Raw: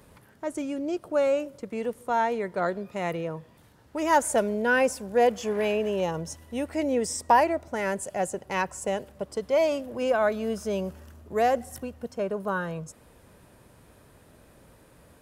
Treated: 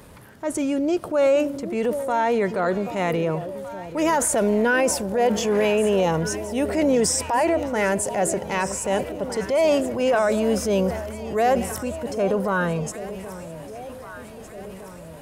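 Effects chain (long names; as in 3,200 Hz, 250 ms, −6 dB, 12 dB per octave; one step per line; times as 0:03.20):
brickwall limiter −20 dBFS, peak gain reduction 11.5 dB
delay that swaps between a low-pass and a high-pass 780 ms, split 830 Hz, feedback 75%, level −13 dB
transient designer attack −5 dB, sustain +4 dB
level +8.5 dB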